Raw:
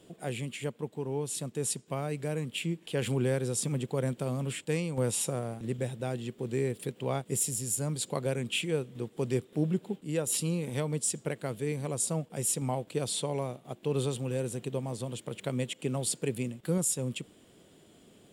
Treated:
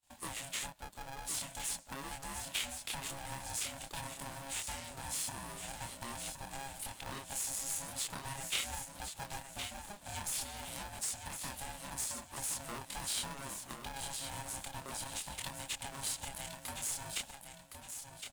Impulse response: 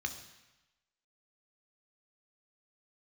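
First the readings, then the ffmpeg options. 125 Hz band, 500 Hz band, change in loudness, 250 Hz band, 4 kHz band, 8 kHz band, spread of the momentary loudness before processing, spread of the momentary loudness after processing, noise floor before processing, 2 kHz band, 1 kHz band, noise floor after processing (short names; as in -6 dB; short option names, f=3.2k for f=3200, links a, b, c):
-18.0 dB, -19.5 dB, -7.5 dB, -18.0 dB, -1.0 dB, -4.0 dB, 7 LU, 8 LU, -59 dBFS, -2.0 dB, -1.5 dB, -55 dBFS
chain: -filter_complex "[0:a]flanger=delay=22.5:depth=7.4:speed=0.45,agate=range=-33dB:threshold=-49dB:ratio=3:detection=peak,acompressor=threshold=-39dB:ratio=6,equalizer=f=1.9k:w=1.9:g=-4.5,aeval=exprs='(tanh(39.8*val(0)+0.55)-tanh(0.55))/39.8':c=same,highpass=f=930:p=1,highshelf=f=4.6k:g=10.5,acrossover=split=4900[a][b];[b]acompressor=threshold=-45dB:ratio=4:attack=1:release=60[c];[a][c]amix=inputs=2:normalize=0,aecho=1:1:1064|2128|3192|4256:0.422|0.135|0.0432|0.0138,aeval=exprs='val(0)*sgn(sin(2*PI*410*n/s))':c=same,volume=8dB"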